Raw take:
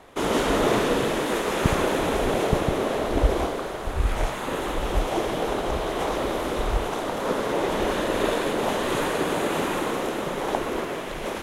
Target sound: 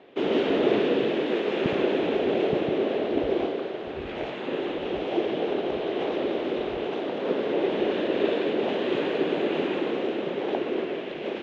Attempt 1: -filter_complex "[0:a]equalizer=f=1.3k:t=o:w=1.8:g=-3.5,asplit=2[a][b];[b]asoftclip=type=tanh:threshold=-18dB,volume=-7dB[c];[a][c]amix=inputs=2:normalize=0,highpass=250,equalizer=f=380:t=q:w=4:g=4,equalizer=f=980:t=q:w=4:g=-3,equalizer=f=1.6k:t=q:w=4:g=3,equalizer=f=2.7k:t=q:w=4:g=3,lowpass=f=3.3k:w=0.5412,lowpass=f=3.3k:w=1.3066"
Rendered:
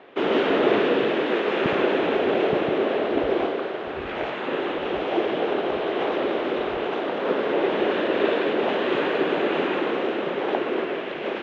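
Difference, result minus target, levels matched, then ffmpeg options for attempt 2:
1000 Hz band +4.0 dB
-filter_complex "[0:a]equalizer=f=1.3k:t=o:w=1.8:g=-13.5,asplit=2[a][b];[b]asoftclip=type=tanh:threshold=-18dB,volume=-7dB[c];[a][c]amix=inputs=2:normalize=0,highpass=250,equalizer=f=380:t=q:w=4:g=4,equalizer=f=980:t=q:w=4:g=-3,equalizer=f=1.6k:t=q:w=4:g=3,equalizer=f=2.7k:t=q:w=4:g=3,lowpass=f=3.3k:w=0.5412,lowpass=f=3.3k:w=1.3066"

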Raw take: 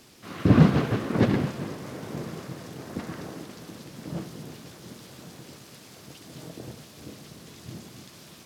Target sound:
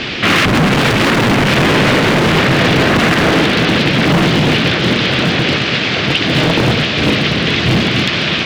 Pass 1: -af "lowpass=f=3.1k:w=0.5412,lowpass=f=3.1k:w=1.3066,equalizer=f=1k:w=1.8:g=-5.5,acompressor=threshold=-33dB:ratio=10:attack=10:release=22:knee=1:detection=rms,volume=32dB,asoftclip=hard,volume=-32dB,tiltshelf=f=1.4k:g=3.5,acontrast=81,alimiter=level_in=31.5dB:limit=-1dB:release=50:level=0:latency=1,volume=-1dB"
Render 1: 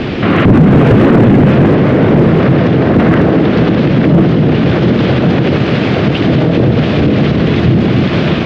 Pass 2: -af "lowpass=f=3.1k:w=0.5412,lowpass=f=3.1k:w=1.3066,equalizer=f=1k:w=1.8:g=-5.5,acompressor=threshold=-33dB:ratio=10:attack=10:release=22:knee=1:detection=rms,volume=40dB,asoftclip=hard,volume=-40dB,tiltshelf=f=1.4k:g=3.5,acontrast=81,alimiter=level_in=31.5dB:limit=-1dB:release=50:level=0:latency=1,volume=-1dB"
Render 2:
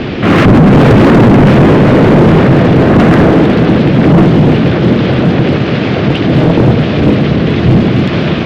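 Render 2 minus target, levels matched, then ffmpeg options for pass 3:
1000 Hz band -2.5 dB
-af "lowpass=f=3.1k:w=0.5412,lowpass=f=3.1k:w=1.3066,equalizer=f=1k:w=1.8:g=-5.5,acompressor=threshold=-33dB:ratio=10:attack=10:release=22:knee=1:detection=rms,volume=40dB,asoftclip=hard,volume=-40dB,tiltshelf=f=1.4k:g=-7,acontrast=81,alimiter=level_in=31.5dB:limit=-1dB:release=50:level=0:latency=1,volume=-1dB"

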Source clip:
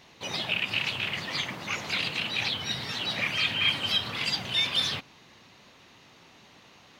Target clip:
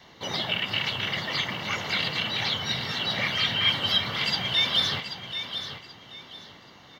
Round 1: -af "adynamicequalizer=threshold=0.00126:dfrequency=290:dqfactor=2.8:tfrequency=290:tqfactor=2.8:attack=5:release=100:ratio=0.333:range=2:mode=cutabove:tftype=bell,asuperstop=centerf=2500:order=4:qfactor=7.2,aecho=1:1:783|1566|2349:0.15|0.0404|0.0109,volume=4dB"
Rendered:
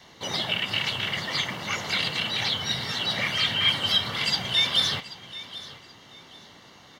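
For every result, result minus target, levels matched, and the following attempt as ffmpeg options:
echo-to-direct -7 dB; 8000 Hz band +4.0 dB
-af "adynamicequalizer=threshold=0.00126:dfrequency=290:dqfactor=2.8:tfrequency=290:tqfactor=2.8:attack=5:release=100:ratio=0.333:range=2:mode=cutabove:tftype=bell,asuperstop=centerf=2500:order=4:qfactor=7.2,aecho=1:1:783|1566|2349:0.335|0.0904|0.0244,volume=4dB"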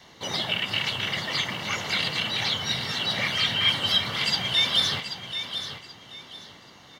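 8000 Hz band +4.5 dB
-af "adynamicequalizer=threshold=0.00126:dfrequency=290:dqfactor=2.8:tfrequency=290:tqfactor=2.8:attack=5:release=100:ratio=0.333:range=2:mode=cutabove:tftype=bell,asuperstop=centerf=2500:order=4:qfactor=7.2,equalizer=f=8.9k:t=o:w=0.79:g=-12.5,aecho=1:1:783|1566|2349:0.335|0.0904|0.0244,volume=4dB"

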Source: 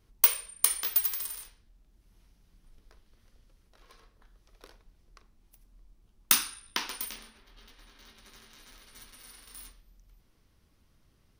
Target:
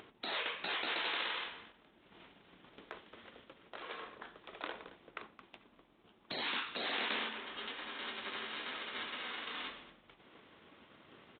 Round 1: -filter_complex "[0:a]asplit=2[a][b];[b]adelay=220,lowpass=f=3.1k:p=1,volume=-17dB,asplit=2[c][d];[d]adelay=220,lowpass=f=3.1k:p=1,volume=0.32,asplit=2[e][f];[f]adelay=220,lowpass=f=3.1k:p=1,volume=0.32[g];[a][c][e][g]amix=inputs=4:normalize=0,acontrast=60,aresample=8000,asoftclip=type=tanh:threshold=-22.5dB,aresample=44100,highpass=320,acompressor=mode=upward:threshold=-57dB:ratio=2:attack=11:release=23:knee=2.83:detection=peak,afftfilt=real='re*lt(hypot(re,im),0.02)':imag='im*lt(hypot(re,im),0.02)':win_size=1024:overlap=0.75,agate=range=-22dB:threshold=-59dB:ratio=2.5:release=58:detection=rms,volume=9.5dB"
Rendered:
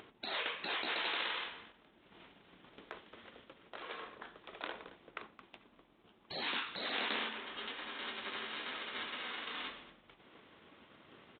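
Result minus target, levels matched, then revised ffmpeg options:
soft clip: distortion -5 dB
-filter_complex "[0:a]asplit=2[a][b];[b]adelay=220,lowpass=f=3.1k:p=1,volume=-17dB,asplit=2[c][d];[d]adelay=220,lowpass=f=3.1k:p=1,volume=0.32,asplit=2[e][f];[f]adelay=220,lowpass=f=3.1k:p=1,volume=0.32[g];[a][c][e][g]amix=inputs=4:normalize=0,acontrast=60,aresample=8000,asoftclip=type=tanh:threshold=-30.5dB,aresample=44100,highpass=320,acompressor=mode=upward:threshold=-57dB:ratio=2:attack=11:release=23:knee=2.83:detection=peak,afftfilt=real='re*lt(hypot(re,im),0.02)':imag='im*lt(hypot(re,im),0.02)':win_size=1024:overlap=0.75,agate=range=-22dB:threshold=-59dB:ratio=2.5:release=58:detection=rms,volume=9.5dB"

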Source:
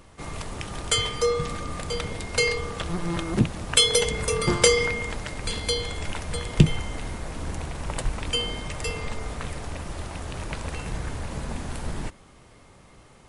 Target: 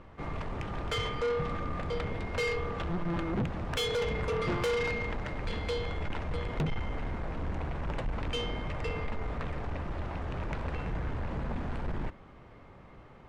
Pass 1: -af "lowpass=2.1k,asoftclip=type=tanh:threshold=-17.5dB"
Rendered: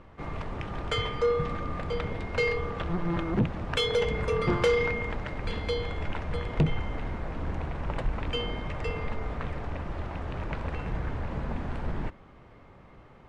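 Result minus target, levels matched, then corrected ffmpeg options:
soft clip: distortion -5 dB
-af "lowpass=2.1k,asoftclip=type=tanh:threshold=-27dB"

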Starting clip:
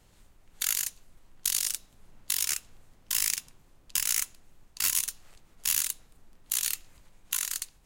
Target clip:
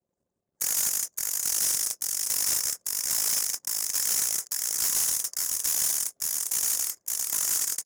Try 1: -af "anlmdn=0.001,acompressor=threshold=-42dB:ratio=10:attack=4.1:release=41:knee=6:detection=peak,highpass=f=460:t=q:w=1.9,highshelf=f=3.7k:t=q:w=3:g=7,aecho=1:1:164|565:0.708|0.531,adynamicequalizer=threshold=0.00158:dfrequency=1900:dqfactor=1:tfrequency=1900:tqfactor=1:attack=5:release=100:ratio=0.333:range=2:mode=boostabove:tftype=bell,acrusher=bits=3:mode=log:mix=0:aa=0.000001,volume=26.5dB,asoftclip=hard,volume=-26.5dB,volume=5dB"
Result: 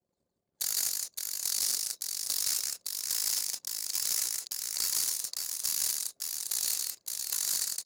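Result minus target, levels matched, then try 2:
compressor: peak gain reduction +10 dB; 4000 Hz band +4.5 dB
-af "anlmdn=0.001,acompressor=threshold=-31dB:ratio=10:attack=4.1:release=41:knee=6:detection=peak,highpass=f=460:t=q:w=1.9,highshelf=f=3.7k:t=q:w=3:g=7,aecho=1:1:164|565:0.708|0.531,adynamicequalizer=threshold=0.00158:dfrequency=1900:dqfactor=1:tfrequency=1900:tqfactor=1:attack=5:release=100:ratio=0.333:range=2:mode=boostabove:tftype=bell,asuperstop=centerf=3400:order=8:qfactor=1.1,acrusher=bits=3:mode=log:mix=0:aa=0.000001,volume=26.5dB,asoftclip=hard,volume=-26.5dB,volume=5dB"

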